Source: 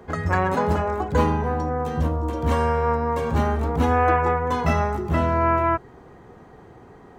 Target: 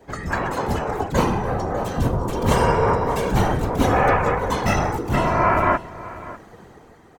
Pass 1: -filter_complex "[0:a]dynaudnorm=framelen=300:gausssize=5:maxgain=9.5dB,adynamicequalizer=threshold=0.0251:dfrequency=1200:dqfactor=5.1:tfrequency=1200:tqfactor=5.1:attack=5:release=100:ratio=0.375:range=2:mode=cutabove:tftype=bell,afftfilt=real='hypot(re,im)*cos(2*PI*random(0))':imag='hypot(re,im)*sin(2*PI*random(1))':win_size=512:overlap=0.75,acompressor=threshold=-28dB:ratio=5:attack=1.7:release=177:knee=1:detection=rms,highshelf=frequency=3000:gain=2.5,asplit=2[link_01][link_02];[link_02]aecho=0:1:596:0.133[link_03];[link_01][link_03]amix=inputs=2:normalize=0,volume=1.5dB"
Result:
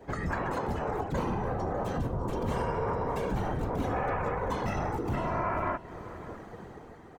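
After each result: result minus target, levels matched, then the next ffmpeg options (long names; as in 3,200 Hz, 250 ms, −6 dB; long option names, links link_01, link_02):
downward compressor: peak gain reduction +15 dB; 8,000 Hz band −6.0 dB
-filter_complex "[0:a]dynaudnorm=framelen=300:gausssize=5:maxgain=9.5dB,adynamicequalizer=threshold=0.0251:dfrequency=1200:dqfactor=5.1:tfrequency=1200:tqfactor=5.1:attack=5:release=100:ratio=0.375:range=2:mode=cutabove:tftype=bell,afftfilt=real='hypot(re,im)*cos(2*PI*random(0))':imag='hypot(re,im)*sin(2*PI*random(1))':win_size=512:overlap=0.75,highshelf=frequency=3000:gain=2.5,asplit=2[link_01][link_02];[link_02]aecho=0:1:596:0.133[link_03];[link_01][link_03]amix=inputs=2:normalize=0,volume=1.5dB"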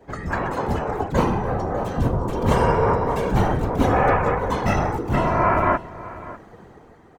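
8,000 Hz band −6.5 dB
-filter_complex "[0:a]dynaudnorm=framelen=300:gausssize=5:maxgain=9.5dB,adynamicequalizer=threshold=0.0251:dfrequency=1200:dqfactor=5.1:tfrequency=1200:tqfactor=5.1:attack=5:release=100:ratio=0.375:range=2:mode=cutabove:tftype=bell,afftfilt=real='hypot(re,im)*cos(2*PI*random(0))':imag='hypot(re,im)*sin(2*PI*random(1))':win_size=512:overlap=0.75,highshelf=frequency=3000:gain=11,asplit=2[link_01][link_02];[link_02]aecho=0:1:596:0.133[link_03];[link_01][link_03]amix=inputs=2:normalize=0,volume=1.5dB"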